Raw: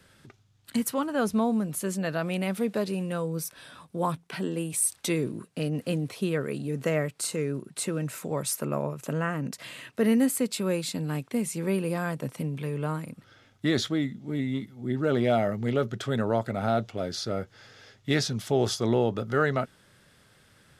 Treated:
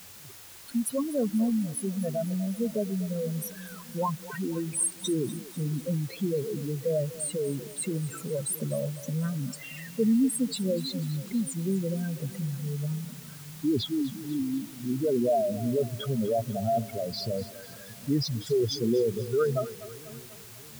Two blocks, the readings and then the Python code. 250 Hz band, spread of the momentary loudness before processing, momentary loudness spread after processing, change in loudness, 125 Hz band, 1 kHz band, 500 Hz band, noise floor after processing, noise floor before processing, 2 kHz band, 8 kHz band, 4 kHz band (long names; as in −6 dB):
−0.5 dB, 8 LU, 12 LU, −1.0 dB, −0.5 dB, −4.5 dB, −0.5 dB, −47 dBFS, −61 dBFS, −11.0 dB, −1.0 dB, −2.0 dB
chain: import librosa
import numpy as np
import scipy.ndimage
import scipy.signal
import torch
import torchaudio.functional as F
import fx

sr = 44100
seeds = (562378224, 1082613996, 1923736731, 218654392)

y = fx.spec_expand(x, sr, power=3.9)
y = fx.echo_split(y, sr, split_hz=300.0, low_ms=626, high_ms=246, feedback_pct=52, wet_db=-16)
y = fx.quant_dither(y, sr, seeds[0], bits=8, dither='triangular')